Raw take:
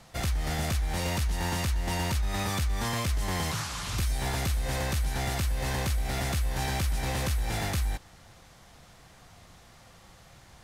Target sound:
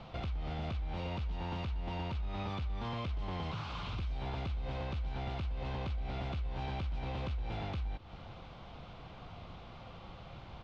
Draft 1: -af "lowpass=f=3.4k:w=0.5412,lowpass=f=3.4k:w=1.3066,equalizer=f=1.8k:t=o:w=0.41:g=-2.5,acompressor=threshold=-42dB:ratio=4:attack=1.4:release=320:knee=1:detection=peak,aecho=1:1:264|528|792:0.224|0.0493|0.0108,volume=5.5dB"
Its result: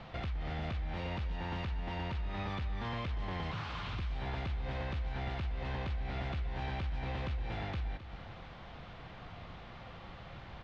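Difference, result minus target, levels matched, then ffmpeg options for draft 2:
echo-to-direct +10 dB; 2000 Hz band +4.5 dB
-af "lowpass=f=3.4k:w=0.5412,lowpass=f=3.4k:w=1.3066,equalizer=f=1.8k:t=o:w=0.41:g=-12.5,acompressor=threshold=-42dB:ratio=4:attack=1.4:release=320:knee=1:detection=peak,aecho=1:1:264|528:0.0708|0.0156,volume=5.5dB"

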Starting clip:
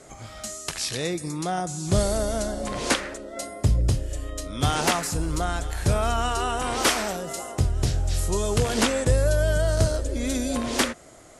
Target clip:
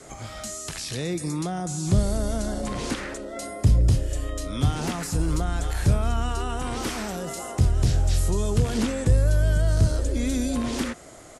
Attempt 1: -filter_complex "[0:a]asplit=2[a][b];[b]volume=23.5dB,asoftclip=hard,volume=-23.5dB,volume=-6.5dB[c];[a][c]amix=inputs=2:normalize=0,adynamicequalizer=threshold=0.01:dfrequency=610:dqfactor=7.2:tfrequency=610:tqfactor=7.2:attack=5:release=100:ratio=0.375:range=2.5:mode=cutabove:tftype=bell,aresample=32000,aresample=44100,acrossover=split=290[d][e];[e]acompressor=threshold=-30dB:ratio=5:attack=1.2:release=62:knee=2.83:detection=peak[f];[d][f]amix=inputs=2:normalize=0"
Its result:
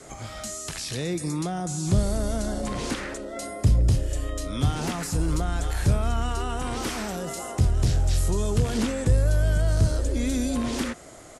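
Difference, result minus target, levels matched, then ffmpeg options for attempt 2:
overloaded stage: distortion +9 dB
-filter_complex "[0:a]asplit=2[a][b];[b]volume=16.5dB,asoftclip=hard,volume=-16.5dB,volume=-6.5dB[c];[a][c]amix=inputs=2:normalize=0,adynamicequalizer=threshold=0.01:dfrequency=610:dqfactor=7.2:tfrequency=610:tqfactor=7.2:attack=5:release=100:ratio=0.375:range=2.5:mode=cutabove:tftype=bell,aresample=32000,aresample=44100,acrossover=split=290[d][e];[e]acompressor=threshold=-30dB:ratio=5:attack=1.2:release=62:knee=2.83:detection=peak[f];[d][f]amix=inputs=2:normalize=0"

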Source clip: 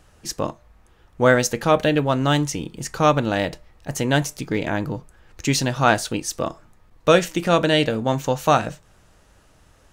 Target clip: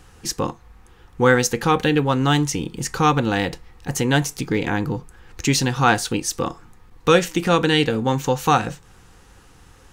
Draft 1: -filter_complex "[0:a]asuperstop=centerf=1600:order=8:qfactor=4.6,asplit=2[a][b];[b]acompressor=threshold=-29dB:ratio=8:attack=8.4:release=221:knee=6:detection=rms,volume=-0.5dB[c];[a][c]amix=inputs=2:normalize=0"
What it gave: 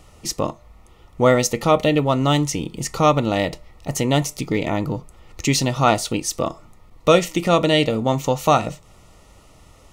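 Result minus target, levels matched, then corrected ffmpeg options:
2000 Hz band -4.5 dB
-filter_complex "[0:a]asuperstop=centerf=620:order=8:qfactor=4.6,asplit=2[a][b];[b]acompressor=threshold=-29dB:ratio=8:attack=8.4:release=221:knee=6:detection=rms,volume=-0.5dB[c];[a][c]amix=inputs=2:normalize=0"

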